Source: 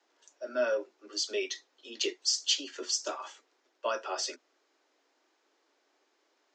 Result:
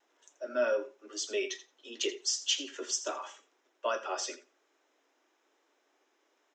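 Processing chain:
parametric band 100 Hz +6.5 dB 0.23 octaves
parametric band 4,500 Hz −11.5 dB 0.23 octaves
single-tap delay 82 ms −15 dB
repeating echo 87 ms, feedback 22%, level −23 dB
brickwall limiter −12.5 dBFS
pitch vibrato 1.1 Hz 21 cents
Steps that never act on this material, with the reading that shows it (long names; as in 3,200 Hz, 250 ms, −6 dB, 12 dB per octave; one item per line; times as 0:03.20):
parametric band 100 Hz: nothing at its input below 210 Hz
brickwall limiter −12.5 dBFS: peak of its input −16.5 dBFS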